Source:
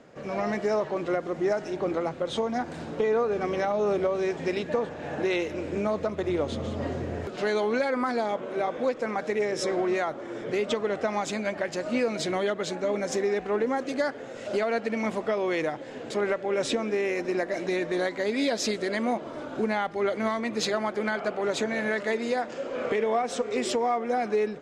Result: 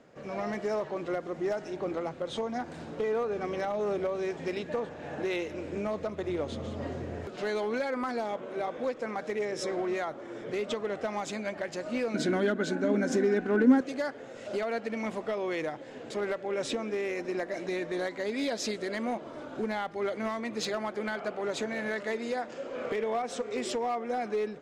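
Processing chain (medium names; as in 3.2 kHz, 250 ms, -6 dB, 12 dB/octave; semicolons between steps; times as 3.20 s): hard clipper -19.5 dBFS, distortion -25 dB; 12.14–13.81 s: small resonant body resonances 250/1500 Hz, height 18 dB, ringing for 45 ms; trim -5 dB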